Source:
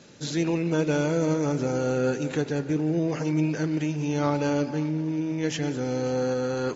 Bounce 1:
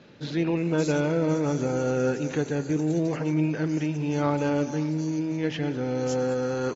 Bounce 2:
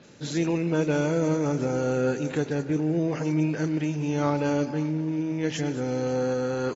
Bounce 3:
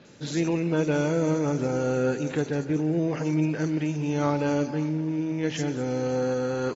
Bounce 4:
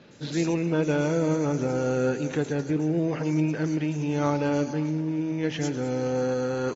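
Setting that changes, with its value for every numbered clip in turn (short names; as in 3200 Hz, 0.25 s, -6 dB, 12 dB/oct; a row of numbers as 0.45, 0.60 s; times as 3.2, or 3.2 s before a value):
bands offset in time, time: 570, 30, 50, 110 ms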